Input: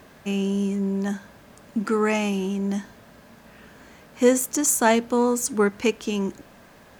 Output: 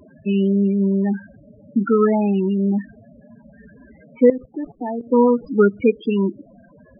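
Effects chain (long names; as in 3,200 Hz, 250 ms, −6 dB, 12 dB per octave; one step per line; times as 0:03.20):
variable-slope delta modulation 32 kbit/s
spectral peaks only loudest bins 8
0:04.24–0:05.07: output level in coarse steps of 16 dB
level +7 dB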